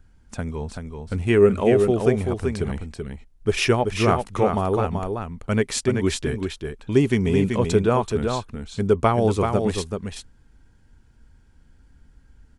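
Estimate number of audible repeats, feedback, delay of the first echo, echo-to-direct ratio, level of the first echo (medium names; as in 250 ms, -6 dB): 1, no regular repeats, 383 ms, -5.5 dB, -5.5 dB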